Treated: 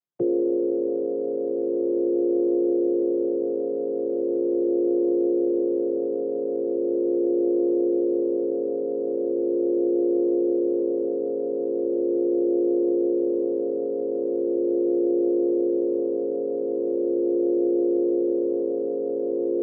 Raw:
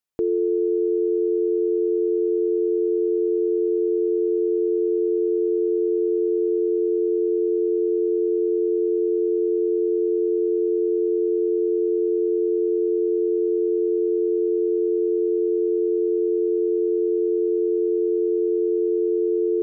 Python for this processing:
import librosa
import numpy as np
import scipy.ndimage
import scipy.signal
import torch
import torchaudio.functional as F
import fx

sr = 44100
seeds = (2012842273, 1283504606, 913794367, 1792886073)

y = fx.chord_vocoder(x, sr, chord='minor triad', root=46)